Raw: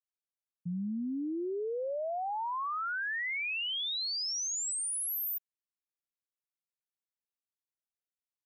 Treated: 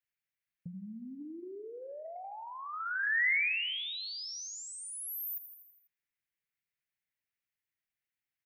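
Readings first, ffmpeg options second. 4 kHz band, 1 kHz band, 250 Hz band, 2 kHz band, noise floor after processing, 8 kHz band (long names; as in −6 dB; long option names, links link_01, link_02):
−3.5 dB, −7.0 dB, −9.5 dB, +4.5 dB, below −85 dBFS, −8.5 dB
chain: -filter_complex "[0:a]flanger=delay=1.8:depth=7.5:regen=-74:speed=1.3:shape=triangular,asplit=2[link_01][link_02];[link_02]aecho=0:1:82|164|246|328|410|492:0.188|0.113|0.0678|0.0407|0.0244|0.0146[link_03];[link_01][link_03]amix=inputs=2:normalize=0,acrossover=split=420[link_04][link_05];[link_05]acompressor=threshold=-42dB:ratio=4[link_06];[link_04][link_06]amix=inputs=2:normalize=0,equalizer=frequency=125:width_type=o:width=1:gain=6,equalizer=frequency=250:width_type=o:width=1:gain=-3,equalizer=frequency=500:width_type=o:width=1:gain=-5,equalizer=frequency=1000:width_type=o:width=1:gain=-9,equalizer=frequency=2000:width_type=o:width=1:gain=12,equalizer=frequency=4000:width_type=o:width=1:gain=-4,equalizer=frequency=8000:width_type=o:width=1:gain=-8,acrossover=split=1100[link_07][link_08];[link_07]acompressor=threshold=-50dB:ratio=6[link_09];[link_09][link_08]amix=inputs=2:normalize=0,volume=7dB"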